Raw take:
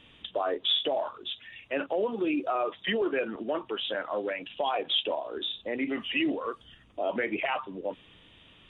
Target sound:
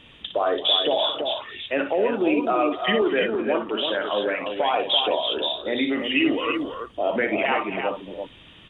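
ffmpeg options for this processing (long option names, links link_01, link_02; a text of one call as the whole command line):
ffmpeg -i in.wav -af "aecho=1:1:58|224|280|307|334:0.398|0.141|0.119|0.1|0.501,volume=6dB" out.wav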